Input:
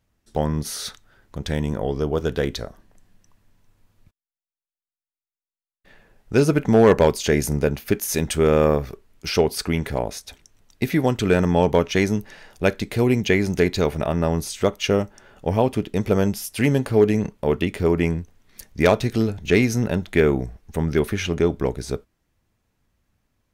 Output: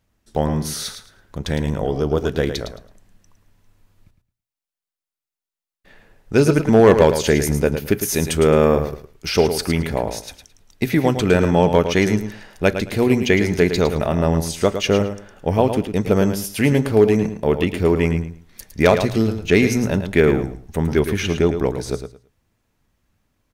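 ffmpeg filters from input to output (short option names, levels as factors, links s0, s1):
-af "bandreject=f=60:t=h:w=6,bandreject=f=120:t=h:w=6,aecho=1:1:109|218|327:0.355|0.071|0.0142,volume=1.33"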